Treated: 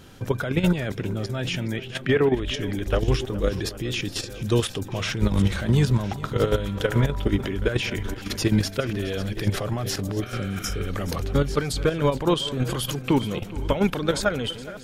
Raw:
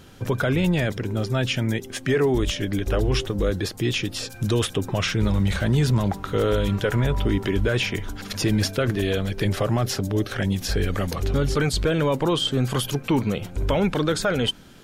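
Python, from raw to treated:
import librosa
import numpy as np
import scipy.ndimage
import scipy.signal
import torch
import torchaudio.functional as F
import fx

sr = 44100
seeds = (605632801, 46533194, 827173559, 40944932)

y = fx.reverse_delay(x, sr, ms=558, wet_db=-14)
y = fx.high_shelf_res(y, sr, hz=4400.0, db=-9.0, q=1.5, at=(1.76, 2.54))
y = fx.spec_repair(y, sr, seeds[0], start_s=10.25, length_s=0.59, low_hz=610.0, high_hz=4900.0, source='after')
y = fx.level_steps(y, sr, step_db=10)
y = y + 10.0 ** (-17.5 / 20.0) * np.pad(y, (int(418 * sr / 1000.0), 0))[:len(y)]
y = y * 10.0 ** (2.5 / 20.0)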